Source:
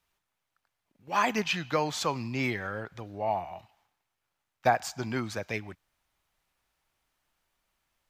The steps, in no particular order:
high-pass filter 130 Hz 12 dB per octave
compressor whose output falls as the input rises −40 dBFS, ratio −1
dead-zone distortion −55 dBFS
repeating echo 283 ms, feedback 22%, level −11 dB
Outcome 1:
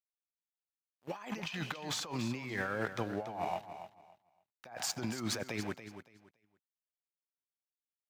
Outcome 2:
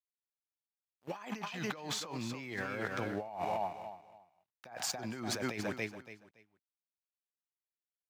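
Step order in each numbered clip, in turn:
dead-zone distortion, then high-pass filter, then compressor whose output falls as the input rises, then repeating echo
dead-zone distortion, then repeating echo, then compressor whose output falls as the input rises, then high-pass filter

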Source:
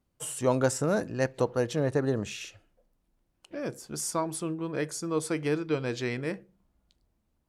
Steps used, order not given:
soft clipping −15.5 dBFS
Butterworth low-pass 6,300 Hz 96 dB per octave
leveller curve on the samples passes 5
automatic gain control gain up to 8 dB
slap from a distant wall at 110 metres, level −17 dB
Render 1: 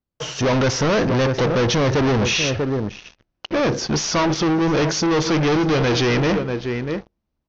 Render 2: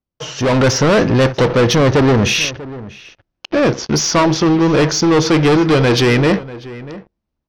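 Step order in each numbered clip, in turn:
slap from a distant wall, then automatic gain control, then soft clipping, then leveller curve on the samples, then Butterworth low-pass
leveller curve on the samples, then Butterworth low-pass, then soft clipping, then slap from a distant wall, then automatic gain control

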